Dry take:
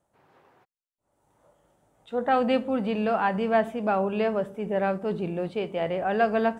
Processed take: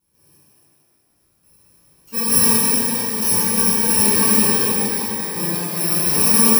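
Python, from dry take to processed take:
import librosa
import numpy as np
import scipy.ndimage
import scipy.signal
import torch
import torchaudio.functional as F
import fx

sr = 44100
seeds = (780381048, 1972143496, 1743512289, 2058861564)

y = fx.bit_reversed(x, sr, seeds[0], block=64)
y = fx.step_gate(y, sr, bpm=84, pattern='xx....x.xxxx', floor_db=-12.0, edge_ms=4.5)
y = fx.rev_shimmer(y, sr, seeds[1], rt60_s=3.4, semitones=12, shimmer_db=-8, drr_db=-10.5)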